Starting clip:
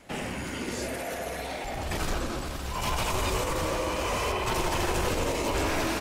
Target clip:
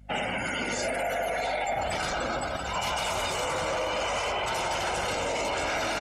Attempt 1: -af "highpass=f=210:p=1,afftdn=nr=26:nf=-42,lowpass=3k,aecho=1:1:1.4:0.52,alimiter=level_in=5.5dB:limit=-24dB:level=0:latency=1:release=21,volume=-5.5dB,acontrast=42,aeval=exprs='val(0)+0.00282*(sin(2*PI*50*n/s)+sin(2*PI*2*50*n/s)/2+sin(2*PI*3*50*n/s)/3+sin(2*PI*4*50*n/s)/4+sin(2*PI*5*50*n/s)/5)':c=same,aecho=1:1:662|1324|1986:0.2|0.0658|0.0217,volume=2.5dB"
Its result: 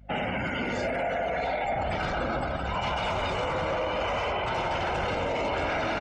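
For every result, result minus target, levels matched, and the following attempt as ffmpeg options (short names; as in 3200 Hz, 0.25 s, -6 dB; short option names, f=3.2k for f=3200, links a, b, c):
4000 Hz band -4.0 dB; 250 Hz band +3.5 dB
-af "highpass=f=210:p=1,afftdn=nr=26:nf=-42,aecho=1:1:1.4:0.52,alimiter=level_in=5.5dB:limit=-24dB:level=0:latency=1:release=21,volume=-5.5dB,acontrast=42,aeval=exprs='val(0)+0.00282*(sin(2*PI*50*n/s)+sin(2*PI*2*50*n/s)/2+sin(2*PI*3*50*n/s)/3+sin(2*PI*4*50*n/s)/4+sin(2*PI*5*50*n/s)/5)':c=same,aecho=1:1:662|1324|1986:0.2|0.0658|0.0217,volume=2.5dB"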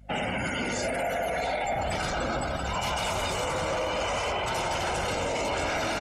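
250 Hz band +3.0 dB
-af "highpass=f=450:p=1,afftdn=nr=26:nf=-42,aecho=1:1:1.4:0.52,alimiter=level_in=5.5dB:limit=-24dB:level=0:latency=1:release=21,volume=-5.5dB,acontrast=42,aeval=exprs='val(0)+0.00282*(sin(2*PI*50*n/s)+sin(2*PI*2*50*n/s)/2+sin(2*PI*3*50*n/s)/3+sin(2*PI*4*50*n/s)/4+sin(2*PI*5*50*n/s)/5)':c=same,aecho=1:1:662|1324|1986:0.2|0.0658|0.0217,volume=2.5dB"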